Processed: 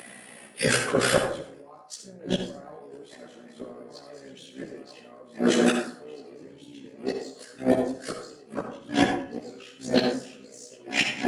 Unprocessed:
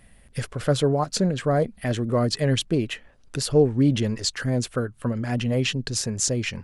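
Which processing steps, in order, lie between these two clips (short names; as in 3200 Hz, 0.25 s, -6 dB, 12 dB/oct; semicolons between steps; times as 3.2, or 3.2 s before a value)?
regenerating reverse delay 0.652 s, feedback 57%, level -3 dB; HPF 220 Hz 24 dB/oct; in parallel at -11 dB: hard clip -23.5 dBFS, distortion -7 dB; on the sum: flipped gate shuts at -16 dBFS, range -35 dB; plain phase-vocoder stretch 1.7×; AM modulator 62 Hz, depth 45%; on a send at -4.5 dB: reverb RT60 0.55 s, pre-delay 52 ms; on the sum: maximiser +23 dB; gain -7.5 dB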